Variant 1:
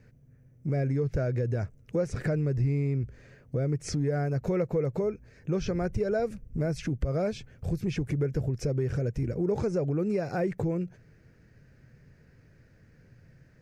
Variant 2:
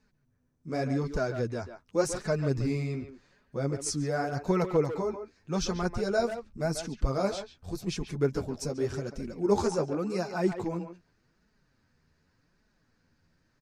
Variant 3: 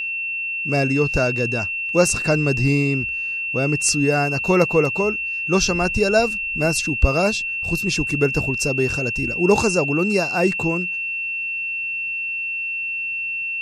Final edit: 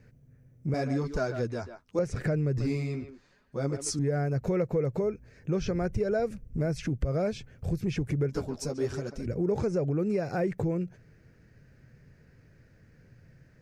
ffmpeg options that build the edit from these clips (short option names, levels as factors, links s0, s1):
-filter_complex "[1:a]asplit=3[s0][s1][s2];[0:a]asplit=4[s3][s4][s5][s6];[s3]atrim=end=0.742[s7];[s0]atrim=start=0.738:end=1.992[s8];[s4]atrim=start=1.988:end=2.582[s9];[s1]atrim=start=2.578:end=3.992[s10];[s5]atrim=start=3.988:end=8.292[s11];[s2]atrim=start=8.288:end=9.262[s12];[s6]atrim=start=9.258[s13];[s7][s8]acrossfade=d=0.004:c1=hsin:c2=hsin[s14];[s14][s9]acrossfade=d=0.004:c1=hsin:c2=hsin[s15];[s15][s10]acrossfade=d=0.004:c1=hsin:c2=hsin[s16];[s16][s11]acrossfade=d=0.004:c1=hsin:c2=hsin[s17];[s17][s12]acrossfade=d=0.004:c1=hsin:c2=hsin[s18];[s18][s13]acrossfade=d=0.004:c1=hsin:c2=hsin"